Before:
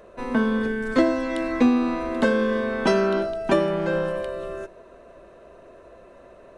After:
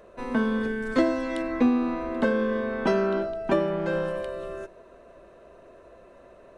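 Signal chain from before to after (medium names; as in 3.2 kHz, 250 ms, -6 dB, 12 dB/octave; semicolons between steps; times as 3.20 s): 1.42–3.86 s: treble shelf 3.9 kHz -10.5 dB; trim -3 dB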